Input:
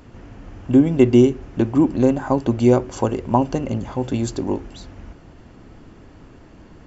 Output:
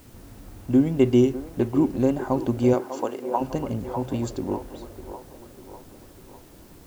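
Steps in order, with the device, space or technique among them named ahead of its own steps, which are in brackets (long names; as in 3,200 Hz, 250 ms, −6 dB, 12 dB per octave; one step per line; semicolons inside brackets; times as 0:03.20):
0:02.73–0:03.40: high-pass filter 210 Hz → 650 Hz 12 dB per octave
plain cassette with noise reduction switched in (one half of a high-frequency compander decoder only; tape wow and flutter; white noise bed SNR 31 dB)
delay with a band-pass on its return 599 ms, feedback 53%, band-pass 770 Hz, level −8 dB
level −5 dB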